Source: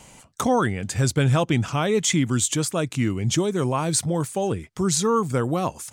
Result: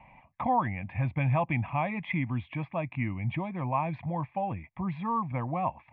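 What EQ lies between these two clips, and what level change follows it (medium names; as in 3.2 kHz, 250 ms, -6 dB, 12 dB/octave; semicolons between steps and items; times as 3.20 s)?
rippled Chebyshev low-pass 3.3 kHz, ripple 6 dB; static phaser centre 2.1 kHz, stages 8; 0.0 dB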